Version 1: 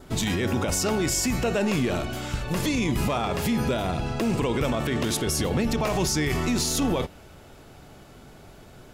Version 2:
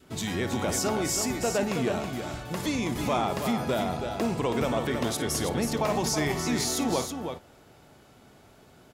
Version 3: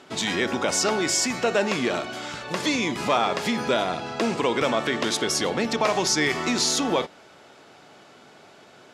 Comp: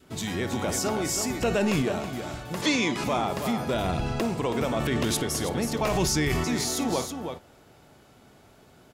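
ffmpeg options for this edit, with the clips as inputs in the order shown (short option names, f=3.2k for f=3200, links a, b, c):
-filter_complex "[0:a]asplit=4[a][b][c][d];[1:a]asplit=6[e][f][g][h][i][j];[e]atrim=end=1.422[k];[a]atrim=start=1.418:end=1.822[l];[f]atrim=start=1.818:end=2.622[m];[2:a]atrim=start=2.618:end=3.042[n];[g]atrim=start=3.038:end=3.742[o];[b]atrim=start=3.738:end=4.212[p];[h]atrim=start=4.208:end=4.772[q];[c]atrim=start=4.768:end=5.232[r];[i]atrim=start=5.228:end=5.822[s];[d]atrim=start=5.818:end=6.442[t];[j]atrim=start=6.438[u];[k][l]acrossfade=d=0.004:c1=hsin:c2=hsin[v];[v][m]acrossfade=d=0.004:c1=hsin:c2=hsin[w];[w][n]acrossfade=d=0.004:c1=hsin:c2=hsin[x];[x][o]acrossfade=d=0.004:c1=hsin:c2=hsin[y];[y][p]acrossfade=d=0.004:c1=hsin:c2=hsin[z];[z][q]acrossfade=d=0.004:c1=hsin:c2=hsin[aa];[aa][r]acrossfade=d=0.004:c1=hsin:c2=hsin[ab];[ab][s]acrossfade=d=0.004:c1=hsin:c2=hsin[ac];[ac][t]acrossfade=d=0.004:c1=hsin:c2=hsin[ad];[ad][u]acrossfade=d=0.004:c1=hsin:c2=hsin"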